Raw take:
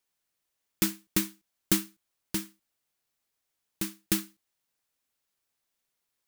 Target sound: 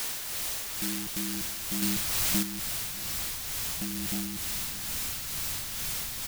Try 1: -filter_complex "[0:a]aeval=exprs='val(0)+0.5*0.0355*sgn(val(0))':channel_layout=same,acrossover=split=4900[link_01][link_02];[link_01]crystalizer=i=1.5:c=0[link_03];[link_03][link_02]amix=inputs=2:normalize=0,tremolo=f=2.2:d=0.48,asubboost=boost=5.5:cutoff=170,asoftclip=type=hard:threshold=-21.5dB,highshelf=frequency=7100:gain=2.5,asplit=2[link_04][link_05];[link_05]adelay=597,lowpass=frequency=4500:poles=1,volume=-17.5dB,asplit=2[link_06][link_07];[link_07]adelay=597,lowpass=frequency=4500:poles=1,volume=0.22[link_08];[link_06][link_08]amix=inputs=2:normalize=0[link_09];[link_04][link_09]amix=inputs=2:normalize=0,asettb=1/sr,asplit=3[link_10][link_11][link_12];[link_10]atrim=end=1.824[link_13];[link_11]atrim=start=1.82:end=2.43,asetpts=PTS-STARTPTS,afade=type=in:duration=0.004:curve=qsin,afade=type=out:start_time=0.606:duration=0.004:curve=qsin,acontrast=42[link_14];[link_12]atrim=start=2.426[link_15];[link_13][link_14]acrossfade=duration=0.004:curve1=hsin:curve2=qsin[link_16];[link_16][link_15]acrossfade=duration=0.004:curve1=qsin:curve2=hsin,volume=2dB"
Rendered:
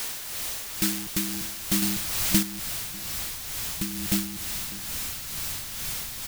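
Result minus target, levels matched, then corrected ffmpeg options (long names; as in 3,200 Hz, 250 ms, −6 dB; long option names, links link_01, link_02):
hard clipping: distortion −6 dB
-filter_complex "[0:a]aeval=exprs='val(0)+0.5*0.0355*sgn(val(0))':channel_layout=same,acrossover=split=4900[link_01][link_02];[link_01]crystalizer=i=1.5:c=0[link_03];[link_03][link_02]amix=inputs=2:normalize=0,tremolo=f=2.2:d=0.48,asubboost=boost=5.5:cutoff=170,asoftclip=type=hard:threshold=-32dB,highshelf=frequency=7100:gain=2.5,asplit=2[link_04][link_05];[link_05]adelay=597,lowpass=frequency=4500:poles=1,volume=-17.5dB,asplit=2[link_06][link_07];[link_07]adelay=597,lowpass=frequency=4500:poles=1,volume=0.22[link_08];[link_06][link_08]amix=inputs=2:normalize=0[link_09];[link_04][link_09]amix=inputs=2:normalize=0,asettb=1/sr,asplit=3[link_10][link_11][link_12];[link_10]atrim=end=1.824[link_13];[link_11]atrim=start=1.82:end=2.43,asetpts=PTS-STARTPTS,afade=type=in:duration=0.004:curve=qsin,afade=type=out:start_time=0.606:duration=0.004:curve=qsin,acontrast=42[link_14];[link_12]atrim=start=2.426[link_15];[link_13][link_14]acrossfade=duration=0.004:curve1=hsin:curve2=qsin[link_16];[link_16][link_15]acrossfade=duration=0.004:curve1=qsin:curve2=hsin,volume=2dB"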